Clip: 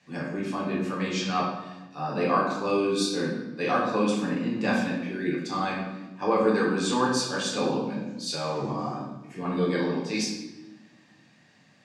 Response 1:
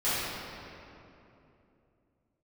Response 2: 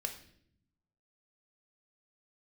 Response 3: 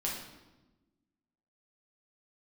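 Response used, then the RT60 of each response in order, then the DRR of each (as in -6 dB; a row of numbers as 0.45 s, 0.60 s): 3; 2.9 s, 0.65 s, 1.1 s; -15.5 dB, 4.5 dB, -4.0 dB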